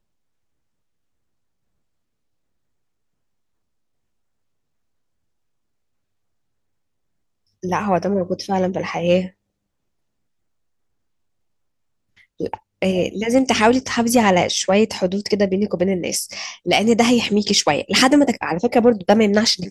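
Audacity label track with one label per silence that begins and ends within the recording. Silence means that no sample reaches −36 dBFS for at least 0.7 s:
9.290000	12.400000	silence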